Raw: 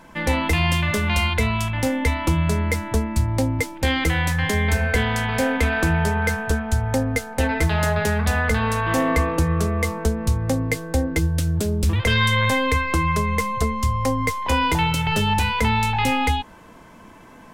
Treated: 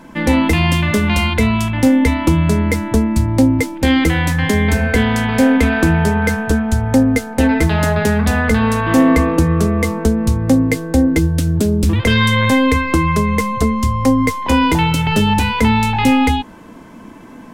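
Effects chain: peaking EQ 260 Hz +9.5 dB 1.1 oct; trim +3.5 dB

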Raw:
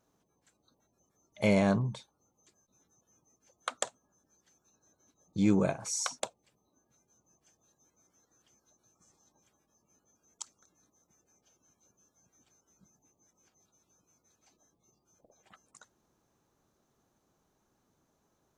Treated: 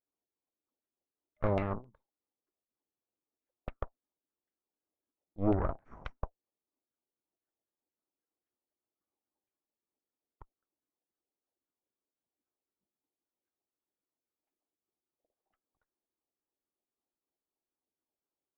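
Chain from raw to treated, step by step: resonant low shelf 220 Hz -11 dB, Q 1.5; Chebyshev shaper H 3 -13 dB, 4 -13 dB, 6 -11 dB, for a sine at -13 dBFS; tilt EQ -3 dB/octave; LFO low-pass saw down 3.8 Hz 670–2600 Hz; upward expansion 1.5:1, over -51 dBFS; trim -3.5 dB

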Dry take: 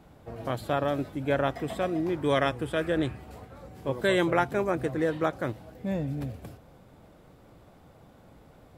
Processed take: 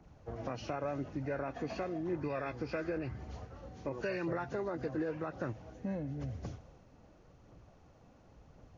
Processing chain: knee-point frequency compression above 1.4 kHz 1.5:1; peak limiter -21 dBFS, peak gain reduction 8.5 dB; compression 3:1, threshold -36 dBFS, peak gain reduction 8 dB; phaser 0.93 Hz, delay 4.3 ms, feedback 25%; three bands expanded up and down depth 40%

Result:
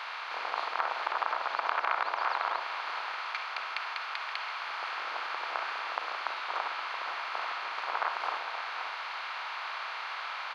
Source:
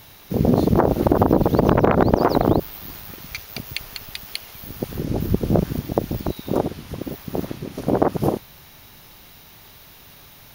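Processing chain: spectral levelling over time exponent 0.4; high-pass 1.2 kHz 24 dB/octave; in parallel at +2 dB: gain riding; on the sum: tape spacing loss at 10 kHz 36 dB; echo from a far wall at 90 m, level -8 dB; reverberation, pre-delay 47 ms, DRR 7.5 dB; trim -6.5 dB

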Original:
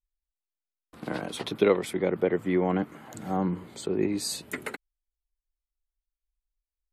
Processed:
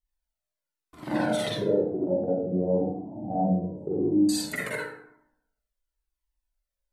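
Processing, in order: 1.53–4.29 s: elliptic low-pass 740 Hz, stop band 50 dB; compression 3:1, threshold -27 dBFS, peak gain reduction 8.5 dB; reverberation RT60 0.80 s, pre-delay 42 ms, DRR -6 dB; Shepard-style flanger falling 0.96 Hz; trim +3 dB

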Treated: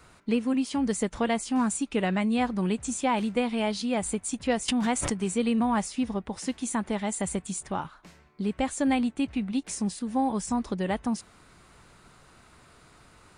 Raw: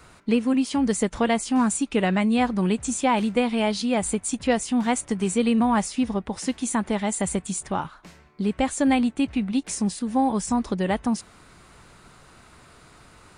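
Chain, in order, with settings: 4.68–5.18 s: swell ahead of each attack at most 31 dB/s; trim -4.5 dB

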